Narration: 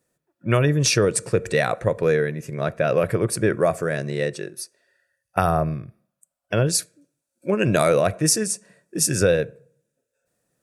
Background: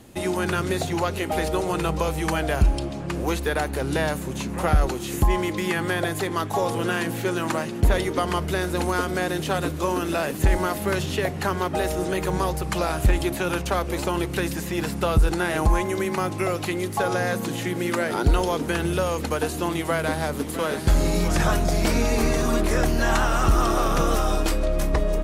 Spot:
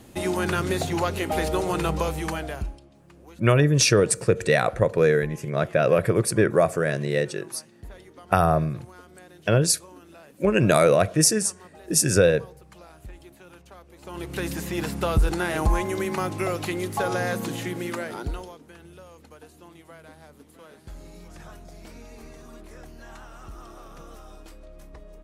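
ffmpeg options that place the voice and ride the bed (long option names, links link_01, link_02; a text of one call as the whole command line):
ffmpeg -i stem1.wav -i stem2.wav -filter_complex "[0:a]adelay=2950,volume=0.5dB[link_01];[1:a]volume=21dB,afade=type=out:start_time=1.94:duration=0.86:silence=0.0707946,afade=type=in:start_time=14:duration=0.54:silence=0.0841395,afade=type=out:start_time=17.46:duration=1.12:silence=0.0891251[link_02];[link_01][link_02]amix=inputs=2:normalize=0" out.wav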